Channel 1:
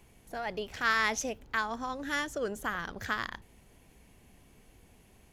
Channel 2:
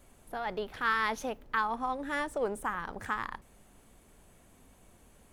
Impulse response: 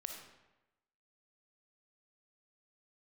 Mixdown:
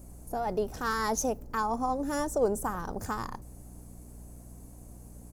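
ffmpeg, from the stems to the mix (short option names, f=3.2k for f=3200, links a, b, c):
-filter_complex "[0:a]bandreject=f=3.2k:w=12,aecho=1:1:2.5:0.95,volume=-18dB[a];[1:a]tiltshelf=f=1.1k:g=10,volume=-2.5dB[b];[a][b]amix=inputs=2:normalize=0,equalizer=f=740:w=1.5:g=3.5,aexciter=amount=6.9:drive=6.1:freq=4.7k,aeval=exprs='val(0)+0.00447*(sin(2*PI*60*n/s)+sin(2*PI*2*60*n/s)/2+sin(2*PI*3*60*n/s)/3+sin(2*PI*4*60*n/s)/4+sin(2*PI*5*60*n/s)/5)':c=same"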